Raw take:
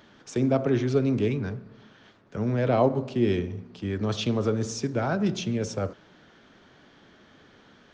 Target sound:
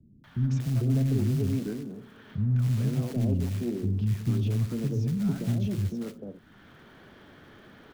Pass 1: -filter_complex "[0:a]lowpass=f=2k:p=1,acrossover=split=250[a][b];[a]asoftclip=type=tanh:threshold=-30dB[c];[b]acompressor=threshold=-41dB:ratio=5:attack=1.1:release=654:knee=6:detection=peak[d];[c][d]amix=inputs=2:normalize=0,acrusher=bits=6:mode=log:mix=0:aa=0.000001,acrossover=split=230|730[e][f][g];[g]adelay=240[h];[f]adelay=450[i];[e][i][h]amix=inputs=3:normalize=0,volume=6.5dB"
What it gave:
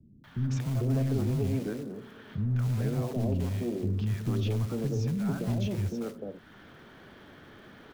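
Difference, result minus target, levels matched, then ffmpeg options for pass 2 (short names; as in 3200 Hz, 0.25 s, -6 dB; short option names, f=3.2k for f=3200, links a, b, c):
soft clip: distortion +11 dB; compressor: peak gain reduction -6 dB
-filter_complex "[0:a]lowpass=f=2k:p=1,acrossover=split=250[a][b];[a]asoftclip=type=tanh:threshold=-21.5dB[c];[b]acompressor=threshold=-48.5dB:ratio=5:attack=1.1:release=654:knee=6:detection=peak[d];[c][d]amix=inputs=2:normalize=0,acrusher=bits=6:mode=log:mix=0:aa=0.000001,acrossover=split=230|730[e][f][g];[g]adelay=240[h];[f]adelay=450[i];[e][i][h]amix=inputs=3:normalize=0,volume=6.5dB"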